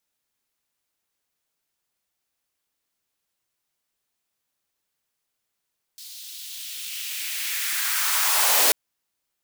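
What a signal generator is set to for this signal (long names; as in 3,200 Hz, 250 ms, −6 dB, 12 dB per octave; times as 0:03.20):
filter sweep on noise white, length 2.74 s highpass, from 4,100 Hz, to 390 Hz, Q 2.1, linear, gain ramp +25.5 dB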